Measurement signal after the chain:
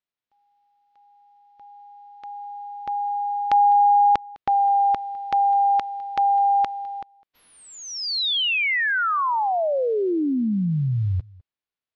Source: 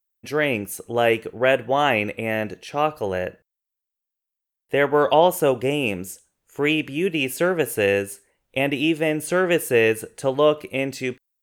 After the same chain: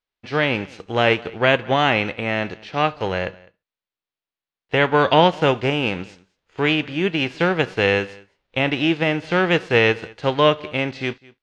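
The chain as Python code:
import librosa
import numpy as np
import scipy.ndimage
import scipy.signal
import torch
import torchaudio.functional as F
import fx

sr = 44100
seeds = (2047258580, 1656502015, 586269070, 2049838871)

p1 = fx.envelope_flatten(x, sr, power=0.6)
p2 = scipy.signal.sosfilt(scipy.signal.butter(4, 4300.0, 'lowpass', fs=sr, output='sos'), p1)
p3 = p2 + fx.echo_single(p2, sr, ms=205, db=-23.5, dry=0)
y = p3 * 10.0 ** (1.5 / 20.0)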